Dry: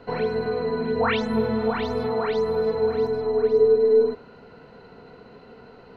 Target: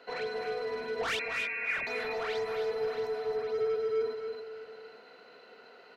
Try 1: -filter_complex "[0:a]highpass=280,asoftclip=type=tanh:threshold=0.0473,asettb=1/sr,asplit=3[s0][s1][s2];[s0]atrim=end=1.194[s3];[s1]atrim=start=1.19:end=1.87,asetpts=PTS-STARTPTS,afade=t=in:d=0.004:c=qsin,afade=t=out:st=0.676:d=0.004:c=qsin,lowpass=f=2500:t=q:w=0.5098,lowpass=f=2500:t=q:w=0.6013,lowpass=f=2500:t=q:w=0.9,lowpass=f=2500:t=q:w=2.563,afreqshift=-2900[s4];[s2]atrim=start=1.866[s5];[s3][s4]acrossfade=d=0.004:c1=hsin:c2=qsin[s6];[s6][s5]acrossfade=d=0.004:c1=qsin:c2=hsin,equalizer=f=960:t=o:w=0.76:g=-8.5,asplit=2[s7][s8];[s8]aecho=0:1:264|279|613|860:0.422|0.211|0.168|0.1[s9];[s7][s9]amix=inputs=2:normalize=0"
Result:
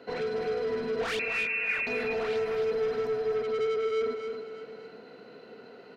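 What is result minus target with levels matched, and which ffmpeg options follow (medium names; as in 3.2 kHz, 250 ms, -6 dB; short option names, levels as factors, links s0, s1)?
250 Hz band +6.0 dB
-filter_complex "[0:a]highpass=690,asoftclip=type=tanh:threshold=0.0473,asettb=1/sr,asplit=3[s0][s1][s2];[s0]atrim=end=1.194[s3];[s1]atrim=start=1.19:end=1.87,asetpts=PTS-STARTPTS,afade=t=in:d=0.004:c=qsin,afade=t=out:st=0.676:d=0.004:c=qsin,lowpass=f=2500:t=q:w=0.5098,lowpass=f=2500:t=q:w=0.6013,lowpass=f=2500:t=q:w=0.9,lowpass=f=2500:t=q:w=2.563,afreqshift=-2900[s4];[s2]atrim=start=1.866[s5];[s3][s4]acrossfade=d=0.004:c1=hsin:c2=qsin[s6];[s6][s5]acrossfade=d=0.004:c1=qsin:c2=hsin,equalizer=f=960:t=o:w=0.76:g=-8.5,asplit=2[s7][s8];[s8]aecho=0:1:264|279|613|860:0.422|0.211|0.168|0.1[s9];[s7][s9]amix=inputs=2:normalize=0"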